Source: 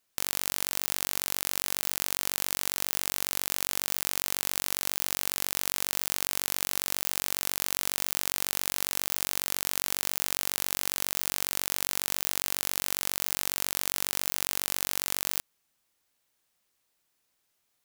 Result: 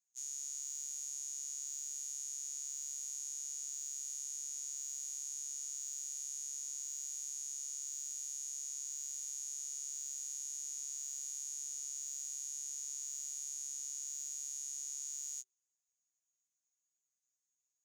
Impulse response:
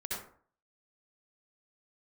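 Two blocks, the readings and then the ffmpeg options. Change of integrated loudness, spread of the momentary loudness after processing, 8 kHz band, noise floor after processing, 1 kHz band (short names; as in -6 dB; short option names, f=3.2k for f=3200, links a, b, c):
-11.5 dB, 0 LU, -5.0 dB, under -85 dBFS, under -35 dB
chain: -af "afreqshift=380,bandpass=f=6.7k:t=q:w=20:csg=0,afftfilt=real='re*2.45*eq(mod(b,6),0)':imag='im*2.45*eq(mod(b,6),0)':win_size=2048:overlap=0.75,volume=7dB"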